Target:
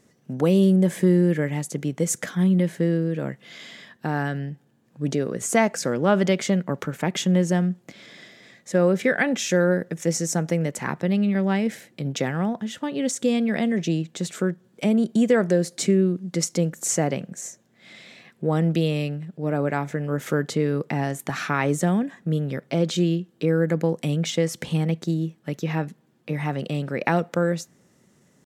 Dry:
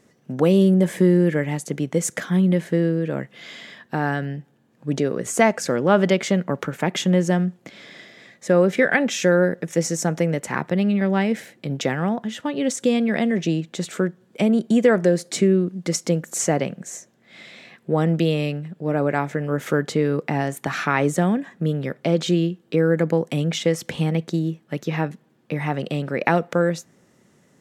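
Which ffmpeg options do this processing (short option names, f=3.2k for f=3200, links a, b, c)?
-af "atempo=0.97,bass=f=250:g=3,treble=f=4k:g=4,volume=-3.5dB"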